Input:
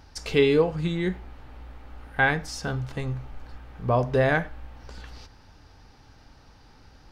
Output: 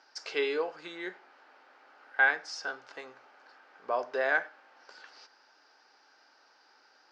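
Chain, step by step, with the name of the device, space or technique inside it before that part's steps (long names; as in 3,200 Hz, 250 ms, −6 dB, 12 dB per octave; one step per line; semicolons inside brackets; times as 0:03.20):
phone speaker on a table (loudspeaker in its box 400–6,500 Hz, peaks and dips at 470 Hz −4 dB, 1,500 Hz +7 dB, 3,500 Hz −3 dB, 5,000 Hz +5 dB)
level −6 dB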